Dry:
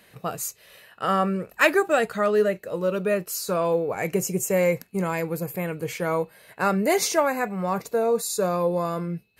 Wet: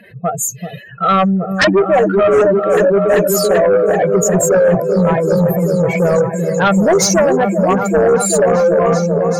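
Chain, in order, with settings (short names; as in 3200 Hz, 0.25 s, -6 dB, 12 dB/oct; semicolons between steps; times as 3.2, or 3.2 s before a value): spectral contrast raised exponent 2.8; repeats that get brighter 0.386 s, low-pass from 400 Hz, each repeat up 1 oct, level -3 dB; sine folder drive 9 dB, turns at -7 dBFS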